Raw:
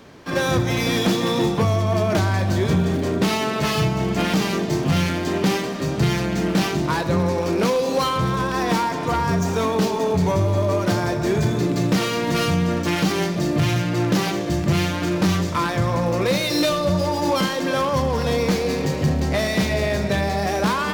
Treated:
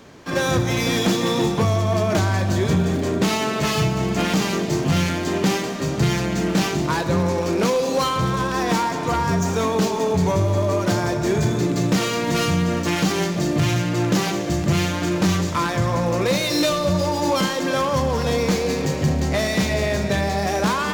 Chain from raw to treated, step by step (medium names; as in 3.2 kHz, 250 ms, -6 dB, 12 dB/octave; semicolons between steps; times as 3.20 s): peaking EQ 6.9 kHz +5 dB 0.38 oct; on a send: thinning echo 179 ms, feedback 73%, level -17 dB